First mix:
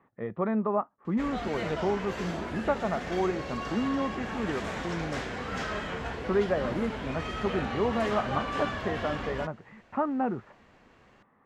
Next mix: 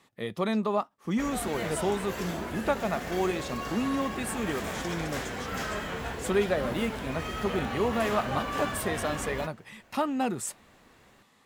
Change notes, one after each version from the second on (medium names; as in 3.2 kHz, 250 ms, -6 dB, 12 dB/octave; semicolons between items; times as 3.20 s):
speech: remove low-pass 1.7 kHz 24 dB/octave; master: remove low-pass 5.5 kHz 12 dB/octave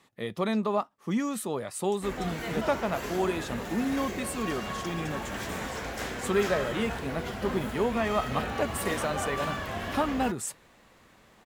background: entry +0.85 s